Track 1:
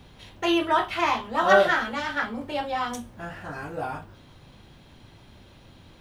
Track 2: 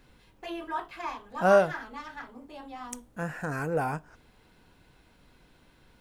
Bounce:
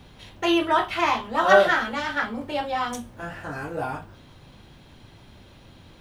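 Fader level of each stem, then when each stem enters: +1.5, −8.0 decibels; 0.00, 0.00 seconds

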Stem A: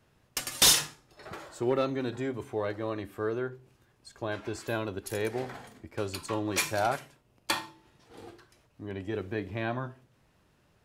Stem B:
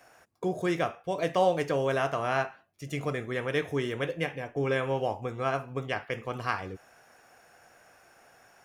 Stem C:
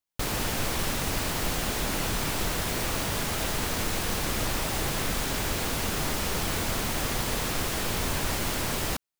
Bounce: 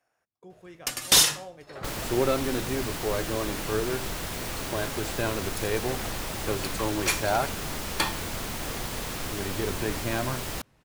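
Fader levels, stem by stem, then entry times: +2.5, −19.0, −4.5 decibels; 0.50, 0.00, 1.65 seconds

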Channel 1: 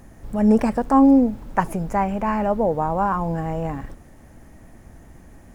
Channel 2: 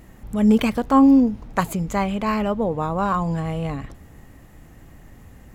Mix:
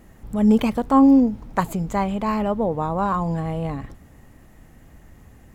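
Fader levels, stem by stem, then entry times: −9.0, −3.5 decibels; 0.00, 0.00 seconds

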